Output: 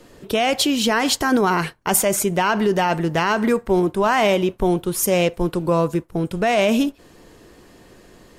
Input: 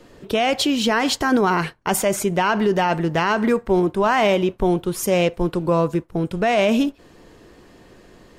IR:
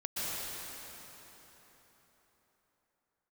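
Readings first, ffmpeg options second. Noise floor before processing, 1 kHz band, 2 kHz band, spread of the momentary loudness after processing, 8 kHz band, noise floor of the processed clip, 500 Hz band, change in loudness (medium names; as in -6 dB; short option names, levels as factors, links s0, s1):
-50 dBFS, 0.0 dB, +0.5 dB, 5 LU, +5.0 dB, -49 dBFS, 0.0 dB, +0.5 dB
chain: -af "equalizer=f=12000:w=0.53:g=7.5"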